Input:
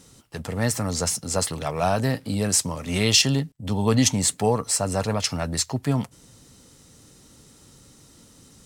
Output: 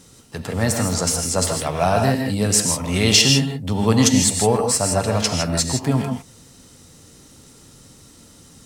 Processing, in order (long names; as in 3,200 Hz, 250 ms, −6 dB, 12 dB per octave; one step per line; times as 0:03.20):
reverb whose tail is shaped and stops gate 180 ms rising, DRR 2.5 dB
level +3 dB